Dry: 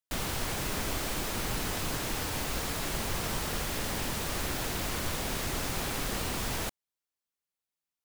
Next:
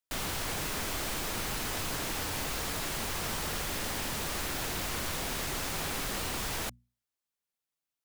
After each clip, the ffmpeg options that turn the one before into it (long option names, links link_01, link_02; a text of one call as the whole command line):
ffmpeg -i in.wav -filter_complex "[0:a]bandreject=frequency=60:width_type=h:width=6,bandreject=frequency=120:width_type=h:width=6,bandreject=frequency=180:width_type=h:width=6,bandreject=frequency=240:width_type=h:width=6,acrossover=split=810[link_01][link_02];[link_01]alimiter=level_in=8.5dB:limit=-24dB:level=0:latency=1:release=17,volume=-8.5dB[link_03];[link_03][link_02]amix=inputs=2:normalize=0" out.wav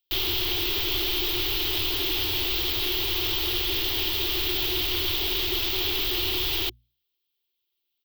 ffmpeg -i in.wav -af "firequalizer=gain_entry='entry(110,0);entry(160,-30);entry(360,10);entry(510,-14);entry(730,-6);entry(1600,-9);entry(3200,12);entry(9900,-29);entry(14000,8)':delay=0.05:min_phase=1,volume=5.5dB" out.wav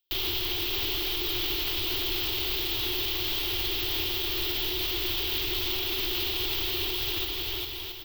ffmpeg -i in.wav -filter_complex "[0:a]asplit=2[link_01][link_02];[link_02]aecho=0:1:560|952|1226|1418|1553:0.631|0.398|0.251|0.158|0.1[link_03];[link_01][link_03]amix=inputs=2:normalize=0,alimiter=limit=-20dB:level=0:latency=1:release=23" out.wav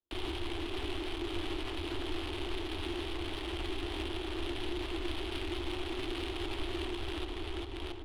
ffmpeg -i in.wav -af "alimiter=level_in=2dB:limit=-24dB:level=0:latency=1:release=241,volume=-2dB,afreqshift=-15,adynamicsmooth=sensitivity=4.5:basefreq=700,volume=6dB" out.wav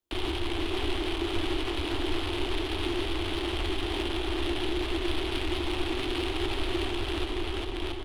ffmpeg -i in.wav -af "aecho=1:1:458:0.422,volume=6.5dB" out.wav